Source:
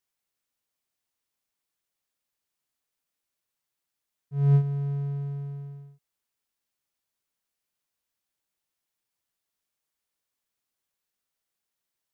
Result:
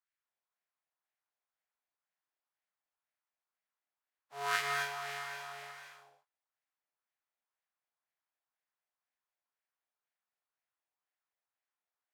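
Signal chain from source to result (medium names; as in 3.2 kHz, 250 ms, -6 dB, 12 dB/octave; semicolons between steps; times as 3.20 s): spectral contrast reduction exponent 0.14; LFO band-pass sine 2 Hz 690–1900 Hz; gated-style reverb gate 290 ms rising, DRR 1.5 dB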